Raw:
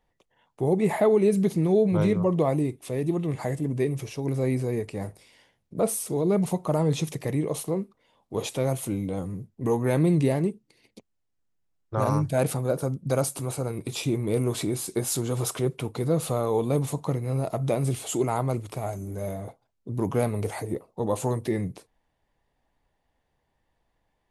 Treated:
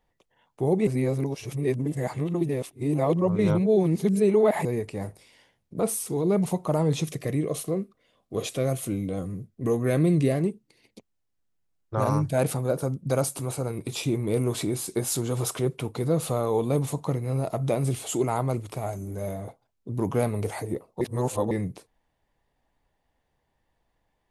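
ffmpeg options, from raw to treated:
-filter_complex "[0:a]asettb=1/sr,asplit=3[a][b][c];[a]atrim=end=5.804[d];[b]atrim=start=5.8:end=6.24,asetpts=PTS-STARTPTS,afade=t=in:d=0.004:c=qsin,afade=t=out:st=0.436:d=0.004:c=qsin,equalizer=f=590:t=o:w=0.25:g=-10[e];[c]atrim=start=6.236[f];[d][e]acrossfade=d=0.004:c1=hsin:c2=qsin[g];[g][f]acrossfade=d=0.004:c1=qsin:c2=hsin,asettb=1/sr,asplit=3[h][i][j];[h]atrim=end=7.044[k];[i]atrim=start=7.04:end=10.4,asetpts=PTS-STARTPTS,afade=t=in:d=0.004:c=qsin,afade=t=out:st=3.356:d=0.004:c=qsin,asuperstop=centerf=890:order=4:qfactor=3.8[l];[j]atrim=start=10.396[m];[k][l]acrossfade=d=0.004:c1=hsin:c2=qsin[n];[n][m]acrossfade=d=0.004:c1=qsin:c2=hsin,asplit=5[o][p][q][r][s];[o]atrim=end=0.872[t];[p]atrim=start=0.868:end=4.652,asetpts=PTS-STARTPTS,areverse[u];[q]atrim=start=4.648:end=21.012[v];[r]atrim=start=21.008:end=21.512,asetpts=PTS-STARTPTS,areverse[w];[s]atrim=start=21.508[x];[t][u]acrossfade=d=0.004:c1=hsin:c2=hsin[y];[y][v]acrossfade=d=0.004:c1=hsin:c2=hsin[z];[z][w]acrossfade=d=0.004:c1=hsin:c2=hsin[aa];[aa][x]acrossfade=d=0.004:c1=hsin:c2=hsin"

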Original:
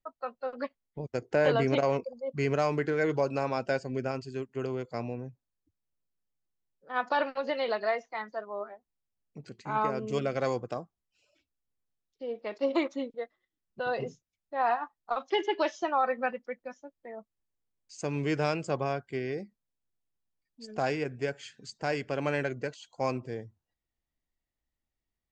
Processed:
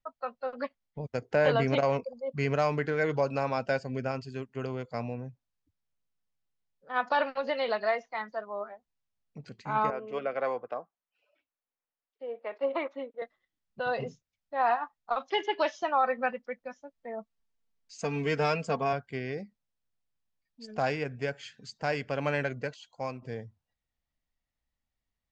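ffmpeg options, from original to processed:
-filter_complex "[0:a]asettb=1/sr,asplit=3[a][b][c];[a]atrim=end=9.904[d];[b]atrim=start=9.9:end=13.22,asetpts=PTS-STARTPTS,afade=t=in:d=0.004:c=qsin,afade=t=out:st=3.316:d=0.004:c=qsin,acrossover=split=310 2700:gain=0.0708 1 0.0708[e][f][g];[e][f][g]amix=inputs=3:normalize=0[h];[c]atrim=start=13.216[i];[d][h]acrossfade=d=0.004:c1=hsin:c2=qsin[j];[j][i]acrossfade=d=0.004:c1=qsin:c2=hsin,asettb=1/sr,asplit=3[k][l][m];[k]atrim=end=16.934[n];[l]atrim=start=16.93:end=18.93,asetpts=PTS-STARTPTS,afade=t=in:d=0.004:c=qsin,afade=t=out:st=1.996:d=0.004:c=qsin,aecho=1:1:4.4:0.72,atrim=end_sample=88200[o];[m]atrim=start=18.926[p];[n][o]acrossfade=d=0.004:c1=hsin:c2=qsin[q];[q][p]acrossfade=d=0.004:c1=qsin:c2=hsin,asplit=2[r][s];[r]atrim=end=23.22,asetpts=PTS-STARTPTS,afade=t=out:st=22.67:d=0.55:silence=0.316228[t];[s]atrim=start=23.22,asetpts=PTS-STARTPTS,afade=t=in:d=0.004:c=hsin:silence=0.316228[u];[t][u]concat=n=2:v=0:a=1,lowpass=5.8k,equalizer=f=350:t=o:w=0.46:g=-8.5,volume=1.5dB"

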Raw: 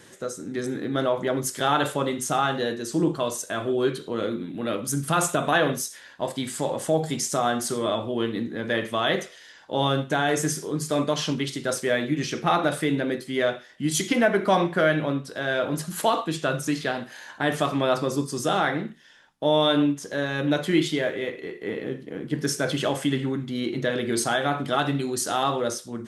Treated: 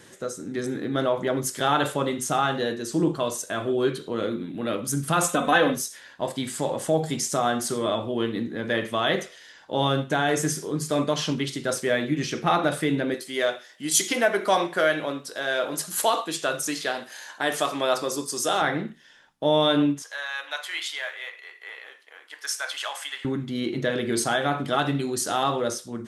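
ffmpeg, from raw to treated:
-filter_complex "[0:a]asettb=1/sr,asplit=3[a][b][c];[a]atrim=end=5.234[d];[b]atrim=start=5.23:end=5.75,asetpts=PTS-STARTPTS,afade=t=in:d=0.004:c=qsin,afade=t=out:st=0.516:d=0.004:c=qsin,aecho=1:1:3.9:0.65,atrim=end_sample=22932[e];[c]atrim=start=5.746[f];[d][e]acrossfade=d=0.004:c1=hsin:c2=qsin[g];[g][f]acrossfade=d=0.004:c1=qsin:c2=hsin,asettb=1/sr,asplit=3[h][i][j];[h]atrim=end=13.144[k];[i]atrim=start=13.14:end=18.62,asetpts=PTS-STARTPTS,afade=t=in:d=0.004:c=qsin,afade=t=out:st=5.476:d=0.004:c=qsin,bass=f=250:g=-15,treble=f=4k:g=7[l];[j]atrim=start=18.616[m];[k][l]acrossfade=d=0.004:c1=hsin:c2=qsin[n];[n][m]acrossfade=d=0.004:c1=qsin:c2=hsin,asettb=1/sr,asplit=3[o][p][q];[o]atrim=end=20.024[r];[p]atrim=start=20.02:end=23.25,asetpts=PTS-STARTPTS,afade=t=in:d=0.004:c=qsin,afade=t=out:st=3.226:d=0.004:c=qsin,highpass=f=870:w=0.5412,highpass=f=870:w=1.3066[s];[q]atrim=start=23.246[t];[r][s]acrossfade=d=0.004:c1=hsin:c2=qsin[u];[u][t]acrossfade=d=0.004:c1=qsin:c2=hsin"

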